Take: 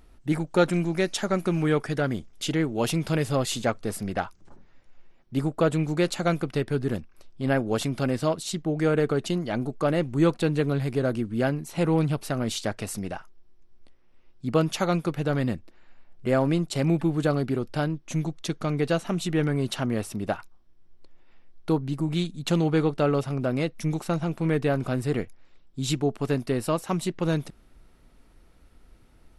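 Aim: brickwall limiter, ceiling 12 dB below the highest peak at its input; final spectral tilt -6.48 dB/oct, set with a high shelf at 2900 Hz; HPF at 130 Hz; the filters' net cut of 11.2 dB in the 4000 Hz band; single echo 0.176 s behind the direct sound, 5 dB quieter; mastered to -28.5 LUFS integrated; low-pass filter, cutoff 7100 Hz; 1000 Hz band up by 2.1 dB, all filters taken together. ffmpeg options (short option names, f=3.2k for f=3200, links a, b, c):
-af "highpass=130,lowpass=7.1k,equalizer=f=1k:t=o:g=4.5,highshelf=f=2.9k:g=-7,equalizer=f=4k:t=o:g=-9,alimiter=limit=-19dB:level=0:latency=1,aecho=1:1:176:0.562,volume=1.5dB"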